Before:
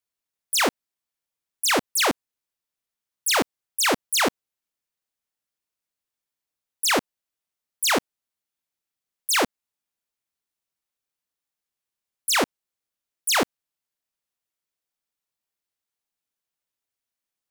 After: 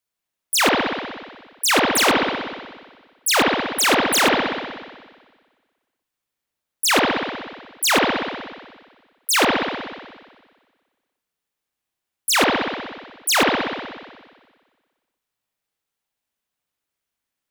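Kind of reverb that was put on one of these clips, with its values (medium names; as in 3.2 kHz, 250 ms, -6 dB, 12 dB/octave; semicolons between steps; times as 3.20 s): spring tank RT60 1.5 s, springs 60 ms, chirp 45 ms, DRR -1.5 dB; trim +3 dB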